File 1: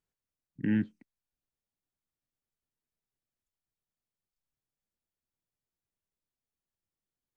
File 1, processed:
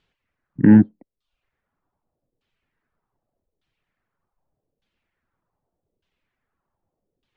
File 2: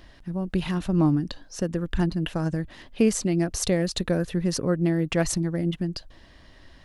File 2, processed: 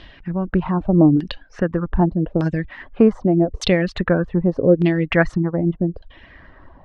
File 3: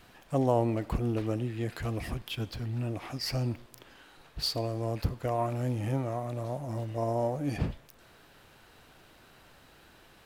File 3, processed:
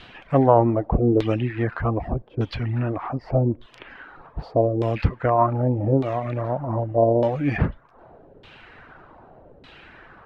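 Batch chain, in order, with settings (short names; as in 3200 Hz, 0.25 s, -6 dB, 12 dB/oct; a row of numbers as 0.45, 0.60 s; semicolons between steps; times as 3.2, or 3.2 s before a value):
reverb removal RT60 0.51 s; LFO low-pass saw down 0.83 Hz 410–3500 Hz; normalise peaks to -2 dBFS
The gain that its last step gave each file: +17.0, +6.5, +9.5 dB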